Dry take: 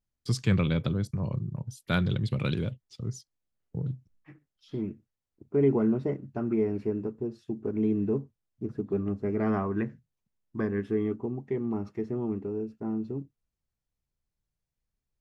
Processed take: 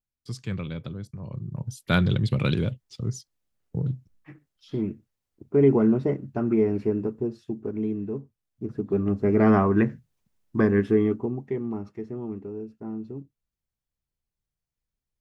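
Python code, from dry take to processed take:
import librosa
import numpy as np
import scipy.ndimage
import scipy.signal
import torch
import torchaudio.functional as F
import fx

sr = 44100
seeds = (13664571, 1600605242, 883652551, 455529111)

y = fx.gain(x, sr, db=fx.line((1.23, -7.0), (1.67, 5.0), (7.25, 5.0), (8.09, -4.0), (9.39, 9.0), (10.81, 9.0), (11.95, -2.5)))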